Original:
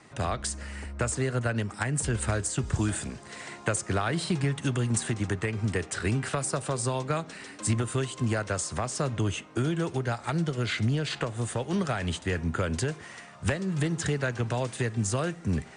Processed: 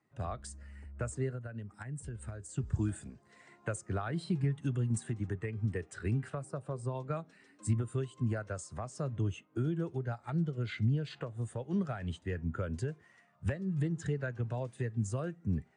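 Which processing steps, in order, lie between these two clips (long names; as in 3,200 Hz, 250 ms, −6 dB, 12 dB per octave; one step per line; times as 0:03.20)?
0:01.31–0:02.49: downward compressor 10 to 1, threshold −29 dBFS, peak gain reduction 8 dB
0:06.30–0:06.95: high-shelf EQ 2,800 Hz −7 dB
every bin expanded away from the loudest bin 1.5 to 1
level −6.5 dB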